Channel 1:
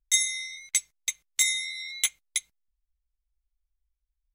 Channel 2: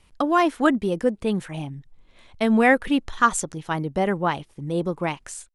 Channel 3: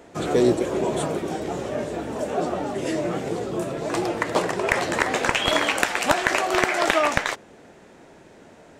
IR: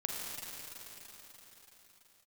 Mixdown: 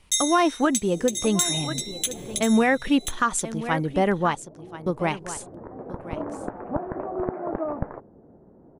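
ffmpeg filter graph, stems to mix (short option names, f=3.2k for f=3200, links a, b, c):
-filter_complex "[0:a]highpass=1.4k,equalizer=f=2.1k:w=6.2:g=-9.5,bandreject=f=2.2k:w=8,volume=2.5dB,asplit=3[a][b][c];[b]volume=-22dB[d];[c]volume=-9.5dB[e];[1:a]volume=1dB,asplit=3[f][g][h];[f]atrim=end=4.35,asetpts=PTS-STARTPTS,afade=t=out:st=4.346:d=0.004:c=hsin[i];[g]atrim=start=4.35:end=4.86,asetpts=PTS-STARTPTS,volume=0[j];[h]atrim=start=4.86,asetpts=PTS-STARTPTS,afade=t=in:d=0.004:c=hsin[k];[i][j][k]concat=n=3:v=0:a=1,asplit=3[l][m][n];[m]volume=-15dB[o];[2:a]lowpass=f=1.2k:w=0.5412,lowpass=f=1.2k:w=1.3066,tiltshelf=f=660:g=9.5,adelay=650,volume=-7.5dB[p];[n]apad=whole_len=416481[q];[p][q]sidechaincompress=threshold=-36dB:ratio=12:attack=30:release=1110[r];[3:a]atrim=start_sample=2205[s];[d][s]afir=irnorm=-1:irlink=0[t];[e][o]amix=inputs=2:normalize=0,aecho=0:1:1033:1[u];[a][l][r][t][u]amix=inputs=5:normalize=0,alimiter=limit=-10.5dB:level=0:latency=1:release=137"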